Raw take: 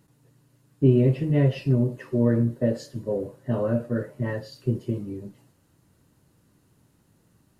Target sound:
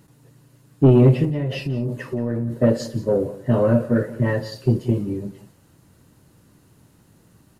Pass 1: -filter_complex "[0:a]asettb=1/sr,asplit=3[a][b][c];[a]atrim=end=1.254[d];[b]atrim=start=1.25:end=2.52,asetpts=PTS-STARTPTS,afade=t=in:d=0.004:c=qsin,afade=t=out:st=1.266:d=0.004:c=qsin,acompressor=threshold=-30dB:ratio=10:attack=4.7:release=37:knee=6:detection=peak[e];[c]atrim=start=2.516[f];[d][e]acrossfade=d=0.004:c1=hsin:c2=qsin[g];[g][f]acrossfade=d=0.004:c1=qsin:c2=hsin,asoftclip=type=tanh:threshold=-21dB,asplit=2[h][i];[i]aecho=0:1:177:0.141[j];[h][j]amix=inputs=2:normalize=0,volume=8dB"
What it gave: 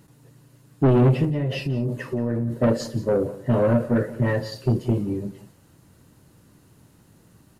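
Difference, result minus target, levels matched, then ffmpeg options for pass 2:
soft clip: distortion +7 dB
-filter_complex "[0:a]asettb=1/sr,asplit=3[a][b][c];[a]atrim=end=1.254[d];[b]atrim=start=1.25:end=2.52,asetpts=PTS-STARTPTS,afade=t=in:d=0.004:c=qsin,afade=t=out:st=1.266:d=0.004:c=qsin,acompressor=threshold=-30dB:ratio=10:attack=4.7:release=37:knee=6:detection=peak[e];[c]atrim=start=2.516[f];[d][e]acrossfade=d=0.004:c1=hsin:c2=qsin[g];[g][f]acrossfade=d=0.004:c1=qsin:c2=hsin,asoftclip=type=tanh:threshold=-14dB,asplit=2[h][i];[i]aecho=0:1:177:0.141[j];[h][j]amix=inputs=2:normalize=0,volume=8dB"

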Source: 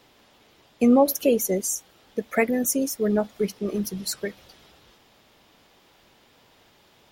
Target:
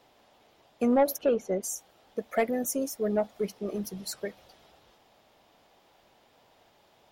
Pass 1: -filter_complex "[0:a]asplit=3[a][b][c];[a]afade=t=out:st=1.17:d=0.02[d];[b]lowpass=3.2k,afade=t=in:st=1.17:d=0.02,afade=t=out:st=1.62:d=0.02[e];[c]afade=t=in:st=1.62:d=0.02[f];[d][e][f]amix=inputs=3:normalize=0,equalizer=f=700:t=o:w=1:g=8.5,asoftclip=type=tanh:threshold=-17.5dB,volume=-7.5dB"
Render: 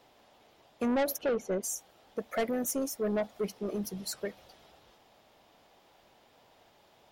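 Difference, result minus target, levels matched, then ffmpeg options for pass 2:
soft clip: distortion +10 dB
-filter_complex "[0:a]asplit=3[a][b][c];[a]afade=t=out:st=1.17:d=0.02[d];[b]lowpass=3.2k,afade=t=in:st=1.17:d=0.02,afade=t=out:st=1.62:d=0.02[e];[c]afade=t=in:st=1.62:d=0.02[f];[d][e][f]amix=inputs=3:normalize=0,equalizer=f=700:t=o:w=1:g=8.5,asoftclip=type=tanh:threshold=-8dB,volume=-7.5dB"

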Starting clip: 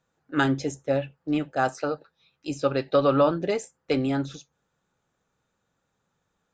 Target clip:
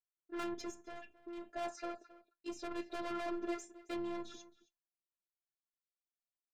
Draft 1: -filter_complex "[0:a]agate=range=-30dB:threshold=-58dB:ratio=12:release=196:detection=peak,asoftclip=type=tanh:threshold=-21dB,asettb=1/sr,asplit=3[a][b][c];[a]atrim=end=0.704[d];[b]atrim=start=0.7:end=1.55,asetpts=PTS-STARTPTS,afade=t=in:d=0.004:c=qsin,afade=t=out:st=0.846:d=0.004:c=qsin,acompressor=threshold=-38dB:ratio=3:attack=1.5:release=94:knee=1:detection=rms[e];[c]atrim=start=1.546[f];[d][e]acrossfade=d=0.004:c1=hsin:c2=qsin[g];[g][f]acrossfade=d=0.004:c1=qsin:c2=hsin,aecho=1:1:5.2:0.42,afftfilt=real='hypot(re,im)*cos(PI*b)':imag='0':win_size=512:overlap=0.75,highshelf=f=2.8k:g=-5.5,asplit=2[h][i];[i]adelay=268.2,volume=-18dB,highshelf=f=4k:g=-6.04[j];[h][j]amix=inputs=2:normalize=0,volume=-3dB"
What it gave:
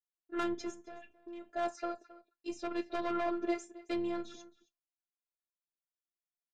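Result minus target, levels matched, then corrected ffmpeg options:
soft clip: distortion -6 dB
-filter_complex "[0:a]agate=range=-30dB:threshold=-58dB:ratio=12:release=196:detection=peak,asoftclip=type=tanh:threshold=-30dB,asettb=1/sr,asplit=3[a][b][c];[a]atrim=end=0.704[d];[b]atrim=start=0.7:end=1.55,asetpts=PTS-STARTPTS,afade=t=in:d=0.004:c=qsin,afade=t=out:st=0.846:d=0.004:c=qsin,acompressor=threshold=-38dB:ratio=3:attack=1.5:release=94:knee=1:detection=rms[e];[c]atrim=start=1.546[f];[d][e]acrossfade=d=0.004:c1=hsin:c2=qsin[g];[g][f]acrossfade=d=0.004:c1=qsin:c2=hsin,aecho=1:1:5.2:0.42,afftfilt=real='hypot(re,im)*cos(PI*b)':imag='0':win_size=512:overlap=0.75,highshelf=f=2.8k:g=-5.5,asplit=2[h][i];[i]adelay=268.2,volume=-18dB,highshelf=f=4k:g=-6.04[j];[h][j]amix=inputs=2:normalize=0,volume=-3dB"

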